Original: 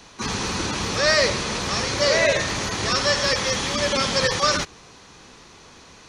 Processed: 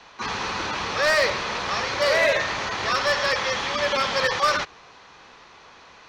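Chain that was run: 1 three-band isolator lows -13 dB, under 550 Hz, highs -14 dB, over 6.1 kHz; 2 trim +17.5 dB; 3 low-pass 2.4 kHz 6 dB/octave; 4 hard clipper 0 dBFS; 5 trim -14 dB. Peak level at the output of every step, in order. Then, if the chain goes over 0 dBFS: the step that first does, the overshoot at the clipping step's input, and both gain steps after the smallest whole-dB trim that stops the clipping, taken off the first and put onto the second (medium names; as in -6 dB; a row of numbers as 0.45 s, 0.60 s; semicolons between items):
-6.5 dBFS, +11.0 dBFS, +8.5 dBFS, 0.0 dBFS, -14.0 dBFS; step 2, 8.5 dB; step 2 +8.5 dB, step 5 -5 dB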